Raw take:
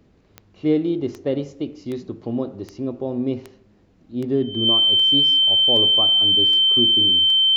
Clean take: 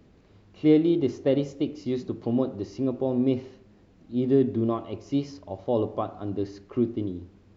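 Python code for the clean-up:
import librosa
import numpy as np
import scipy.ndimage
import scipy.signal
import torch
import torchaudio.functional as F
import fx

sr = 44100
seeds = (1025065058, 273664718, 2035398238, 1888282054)

y = fx.fix_declick_ar(x, sr, threshold=10.0)
y = fx.notch(y, sr, hz=3100.0, q=30.0)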